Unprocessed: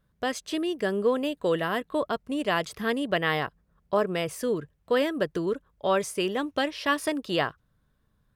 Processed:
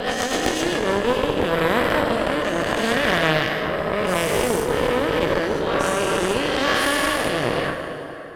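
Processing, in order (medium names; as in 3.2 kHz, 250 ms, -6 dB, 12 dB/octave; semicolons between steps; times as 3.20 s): every event in the spectrogram widened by 480 ms; in parallel at -1.5 dB: compressor with a negative ratio -28 dBFS, ratio -1; on the sum: rotary cabinet horn 8 Hz, later 0.8 Hz, at 0.51 s; plate-style reverb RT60 3.8 s, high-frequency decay 0.65×, DRR 3.5 dB; Chebyshev shaper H 4 -10 dB, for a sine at -1.5 dBFS; trim -4 dB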